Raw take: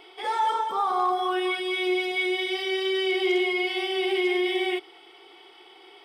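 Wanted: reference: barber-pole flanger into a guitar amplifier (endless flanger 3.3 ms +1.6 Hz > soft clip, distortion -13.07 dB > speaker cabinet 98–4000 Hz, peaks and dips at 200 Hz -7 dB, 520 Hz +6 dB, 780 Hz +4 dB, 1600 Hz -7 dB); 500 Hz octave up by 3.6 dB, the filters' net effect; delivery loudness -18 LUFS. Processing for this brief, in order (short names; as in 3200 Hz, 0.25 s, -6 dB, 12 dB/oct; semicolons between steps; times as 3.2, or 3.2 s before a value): bell 500 Hz +5 dB; endless flanger 3.3 ms +1.6 Hz; soft clip -23.5 dBFS; speaker cabinet 98–4000 Hz, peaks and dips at 200 Hz -7 dB, 520 Hz +6 dB, 780 Hz +4 dB, 1600 Hz -7 dB; gain +11 dB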